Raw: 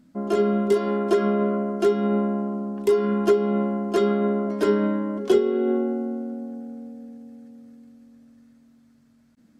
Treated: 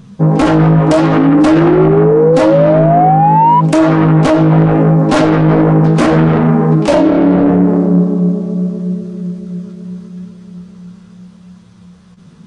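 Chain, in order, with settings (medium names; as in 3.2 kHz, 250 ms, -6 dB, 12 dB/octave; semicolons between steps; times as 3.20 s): self-modulated delay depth 0.77 ms; flange 1 Hz, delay 5.7 ms, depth 10 ms, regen +29%; painted sound rise, 0.90–2.78 s, 340–1300 Hz -26 dBFS; in parallel at -5 dB: saturation -22.5 dBFS, distortion -12 dB; on the sum: tape speed -23%; resampled via 22.05 kHz; loudness maximiser +20.5 dB; trim -1 dB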